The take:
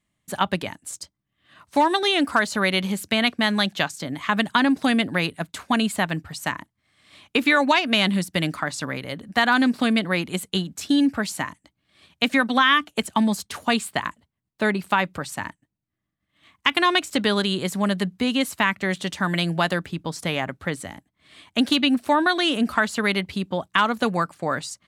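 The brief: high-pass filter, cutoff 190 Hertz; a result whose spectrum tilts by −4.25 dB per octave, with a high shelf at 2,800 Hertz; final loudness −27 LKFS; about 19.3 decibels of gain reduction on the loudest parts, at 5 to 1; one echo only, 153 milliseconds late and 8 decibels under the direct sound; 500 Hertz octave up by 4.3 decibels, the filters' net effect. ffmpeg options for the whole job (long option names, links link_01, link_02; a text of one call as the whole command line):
ffmpeg -i in.wav -af "highpass=190,equalizer=frequency=500:width_type=o:gain=6,highshelf=frequency=2800:gain=-6.5,acompressor=threshold=-35dB:ratio=5,aecho=1:1:153:0.398,volume=10.5dB" out.wav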